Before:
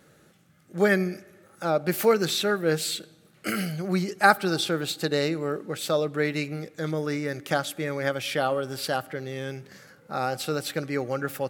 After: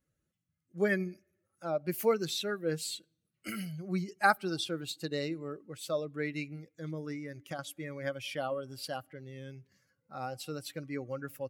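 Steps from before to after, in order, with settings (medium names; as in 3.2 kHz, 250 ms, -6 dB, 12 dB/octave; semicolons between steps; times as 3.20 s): expander on every frequency bin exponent 1.5; 7.11–7.59 s: compression, threshold -30 dBFS, peak gain reduction 8 dB; trim -6 dB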